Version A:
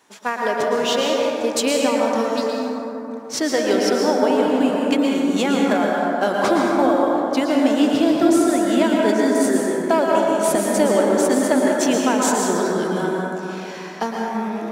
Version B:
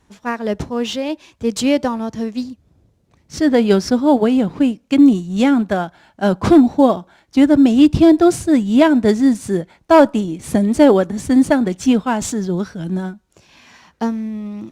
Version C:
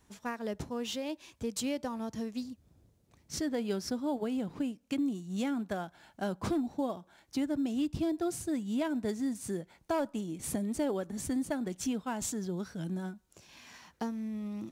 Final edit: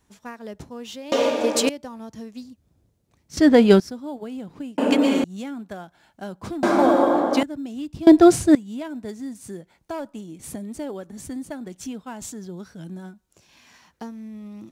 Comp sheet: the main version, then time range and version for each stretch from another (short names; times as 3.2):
C
1.12–1.69 from A
3.37–3.8 from B
4.78–5.24 from A
6.63–7.43 from A
8.07–8.55 from B